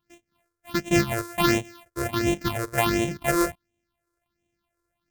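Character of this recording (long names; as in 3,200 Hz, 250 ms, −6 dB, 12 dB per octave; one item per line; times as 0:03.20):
a buzz of ramps at a fixed pitch in blocks of 128 samples
phaser sweep stages 6, 1.4 Hz, lowest notch 200–1,300 Hz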